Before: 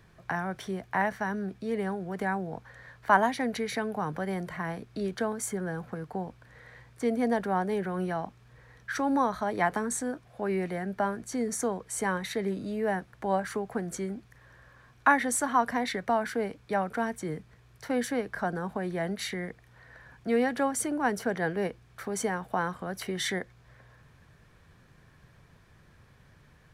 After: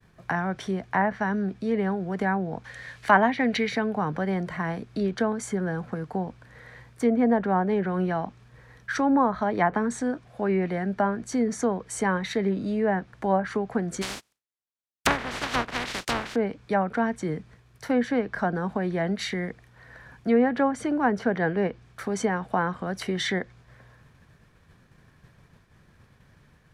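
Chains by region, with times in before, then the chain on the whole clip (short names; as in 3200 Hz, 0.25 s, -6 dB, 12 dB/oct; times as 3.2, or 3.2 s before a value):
2.64–3.69 band shelf 4600 Hz +9.5 dB 2.8 oct + notch 970 Hz, Q 23
14.01–16.34 spectral contrast lowered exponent 0.14 + gate -45 dBFS, range -17 dB
whole clip: treble ducked by the level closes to 1700 Hz, closed at -22.5 dBFS; expander -53 dBFS; bell 220 Hz +3 dB 0.84 oct; gain +4 dB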